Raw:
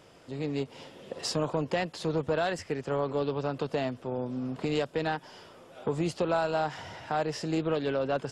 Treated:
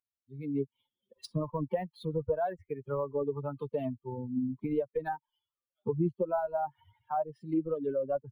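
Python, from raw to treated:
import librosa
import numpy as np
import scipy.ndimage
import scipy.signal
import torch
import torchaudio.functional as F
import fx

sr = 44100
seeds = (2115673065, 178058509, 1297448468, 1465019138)

p1 = fx.bin_expand(x, sr, power=3.0)
p2 = fx.env_lowpass_down(p1, sr, base_hz=890.0, full_db=-33.5)
p3 = fx.high_shelf(p2, sr, hz=4500.0, db=-8.5)
p4 = fx.rider(p3, sr, range_db=10, speed_s=0.5)
p5 = p3 + (p4 * 10.0 ** (-1.0 / 20.0))
p6 = fx.peak_eq(p5, sr, hz=2900.0, db=-2.5, octaves=0.56)
y = np.interp(np.arange(len(p6)), np.arange(len(p6))[::3], p6[::3])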